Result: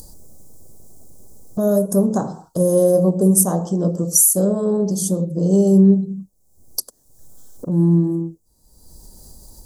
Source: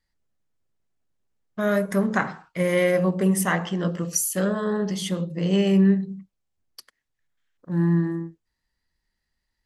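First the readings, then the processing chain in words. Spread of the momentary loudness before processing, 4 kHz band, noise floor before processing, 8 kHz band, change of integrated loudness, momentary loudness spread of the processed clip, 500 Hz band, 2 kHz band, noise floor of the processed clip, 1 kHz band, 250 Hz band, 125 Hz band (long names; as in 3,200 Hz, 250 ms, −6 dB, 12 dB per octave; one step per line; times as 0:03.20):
10 LU, −3.0 dB, −80 dBFS, +11.5 dB, +6.5 dB, 15 LU, +6.5 dB, below −20 dB, −60 dBFS, −0.5 dB, +6.0 dB, +6.0 dB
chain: Chebyshev band-stop filter 590–7,900 Hz, order 2
upward compression, threshold −24 dBFS
high-shelf EQ 2,300 Hz +7 dB
level +6.5 dB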